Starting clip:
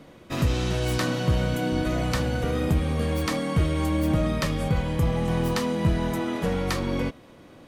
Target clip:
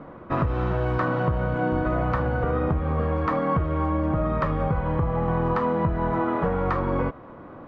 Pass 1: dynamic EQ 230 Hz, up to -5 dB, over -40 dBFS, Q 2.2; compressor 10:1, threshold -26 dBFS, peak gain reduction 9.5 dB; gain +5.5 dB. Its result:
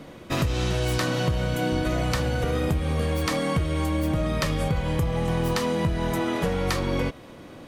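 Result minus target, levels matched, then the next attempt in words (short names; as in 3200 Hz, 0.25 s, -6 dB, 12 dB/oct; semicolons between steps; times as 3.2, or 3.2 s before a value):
1000 Hz band -4.5 dB
dynamic EQ 230 Hz, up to -5 dB, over -40 dBFS, Q 2.2; compressor 10:1, threshold -26 dBFS, peak gain reduction 9.5 dB; synth low-pass 1200 Hz, resonance Q 2.1; gain +5.5 dB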